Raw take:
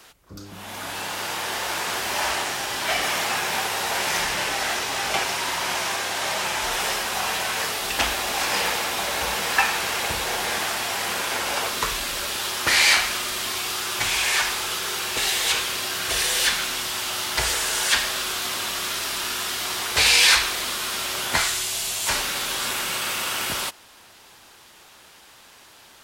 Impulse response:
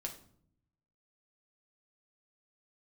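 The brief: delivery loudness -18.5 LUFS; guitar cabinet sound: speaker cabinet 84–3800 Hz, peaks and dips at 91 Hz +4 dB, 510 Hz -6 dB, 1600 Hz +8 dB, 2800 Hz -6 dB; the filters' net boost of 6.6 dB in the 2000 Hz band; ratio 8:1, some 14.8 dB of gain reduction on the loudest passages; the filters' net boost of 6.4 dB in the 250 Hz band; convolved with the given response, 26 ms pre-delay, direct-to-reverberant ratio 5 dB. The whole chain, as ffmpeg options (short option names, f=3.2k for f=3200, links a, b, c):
-filter_complex "[0:a]equalizer=f=250:t=o:g=9,equalizer=f=2k:t=o:g=4,acompressor=threshold=-26dB:ratio=8,asplit=2[a][b];[1:a]atrim=start_sample=2205,adelay=26[c];[b][c]afir=irnorm=-1:irlink=0,volume=-3.5dB[d];[a][d]amix=inputs=2:normalize=0,highpass=84,equalizer=f=91:t=q:w=4:g=4,equalizer=f=510:t=q:w=4:g=-6,equalizer=f=1.6k:t=q:w=4:g=8,equalizer=f=2.8k:t=q:w=4:g=-6,lowpass=f=3.8k:w=0.5412,lowpass=f=3.8k:w=1.3066,volume=8.5dB"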